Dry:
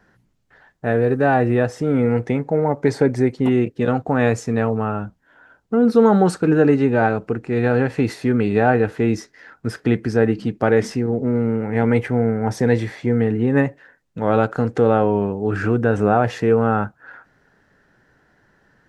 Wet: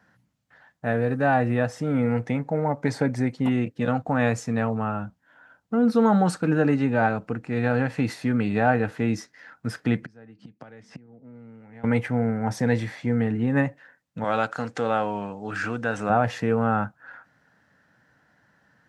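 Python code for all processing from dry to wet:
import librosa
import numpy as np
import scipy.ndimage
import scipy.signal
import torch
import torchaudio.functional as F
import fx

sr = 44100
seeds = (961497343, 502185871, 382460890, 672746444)

y = fx.chain(x, sr, fx.lowpass(hz=7500.0, slope=12),
    fx.gate_flip(shuts_db=-18.0, range_db=-25),
    fx.band_squash(depth_pct=70), at=(10.02, 11.84))
y = fx.chain(y, sr, fx.lowpass(hz=7700.0, slope=12),
    fx.tilt_eq(slope=3.0), at=(14.24, 16.1))
y = scipy.signal.sosfilt(scipy.signal.butter(2, 92.0, 'highpass', fs=sr, output='sos'), y)
y = fx.peak_eq(y, sr, hz=390.0, db=-12.5, octaves=0.4)
y = y * 10.0 ** (-3.0 / 20.0)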